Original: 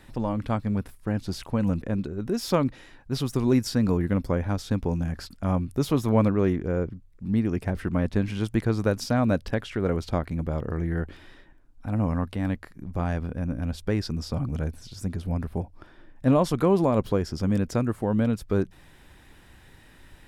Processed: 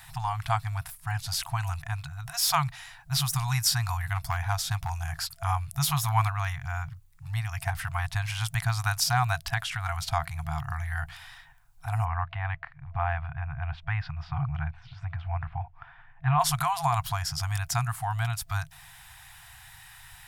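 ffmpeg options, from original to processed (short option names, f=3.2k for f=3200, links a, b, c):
-filter_complex "[0:a]asettb=1/sr,asplit=3[a][b][c];[a]atrim=end=4.154[d];[b]atrim=start=4.15:end=4.9,asetpts=PTS-STARTPTS,afade=t=in:d=0.004:c=qsin,afade=t=out:st=0.746:d=0.004:c=qsin,aeval=exprs='clip(val(0),-1,0.0794)':c=same[e];[c]atrim=start=4.896[f];[d][e]acrossfade=d=0.004:c1=hsin:c2=qsin[g];[g][f]acrossfade=d=0.004:c1=qsin:c2=hsin,asplit=3[h][i][j];[h]afade=t=out:st=12.04:d=0.02[k];[i]lowpass=f=2.6k:w=0.5412,lowpass=f=2.6k:w=1.3066,afade=t=in:st=12.04:d=0.02,afade=t=out:st=16.39:d=0.02[l];[j]afade=t=in:st=16.39:d=0.02[m];[k][l][m]amix=inputs=3:normalize=0,highshelf=f=7.4k:g=12,afftfilt=real='re*(1-between(b*sr/4096,160,670))':imag='im*(1-between(b*sr/4096,160,670))':win_size=4096:overlap=0.75,lowshelf=f=110:g=-10.5,volume=5dB"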